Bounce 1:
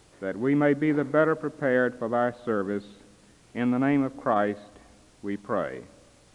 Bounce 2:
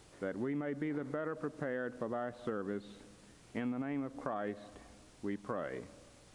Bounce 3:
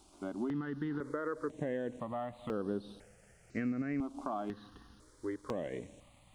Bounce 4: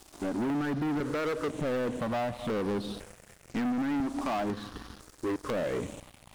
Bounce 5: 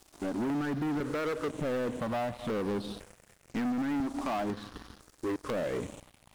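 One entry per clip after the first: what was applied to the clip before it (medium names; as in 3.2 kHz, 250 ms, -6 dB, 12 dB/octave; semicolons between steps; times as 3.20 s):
peak limiter -17.5 dBFS, peak gain reduction 9 dB; compression, threshold -31 dBFS, peak gain reduction 9 dB; trim -3 dB
in parallel at -5.5 dB: crossover distortion -55.5 dBFS; on the sum: stepped phaser 2 Hz 490–7100 Hz
waveshaping leveller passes 5; trim -4.5 dB
companding laws mixed up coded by A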